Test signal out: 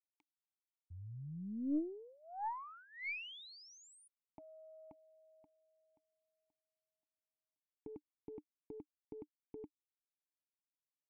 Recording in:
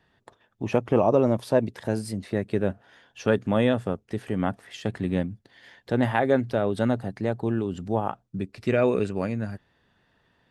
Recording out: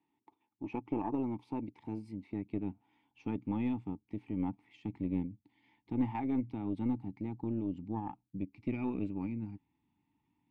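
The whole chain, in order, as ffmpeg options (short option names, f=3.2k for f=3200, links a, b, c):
-filter_complex "[0:a]asubboost=boost=7:cutoff=150,asplit=3[a][b][c];[a]bandpass=f=300:t=q:w=8,volume=0dB[d];[b]bandpass=f=870:t=q:w=8,volume=-6dB[e];[c]bandpass=f=2.24k:t=q:w=8,volume=-9dB[f];[d][e][f]amix=inputs=3:normalize=0,aeval=exprs='0.1*(cos(1*acos(clip(val(0)/0.1,-1,1)))-cos(1*PI/2))+0.00251*(cos(3*acos(clip(val(0)/0.1,-1,1)))-cos(3*PI/2))+0.00708*(cos(4*acos(clip(val(0)/0.1,-1,1)))-cos(4*PI/2))':c=same"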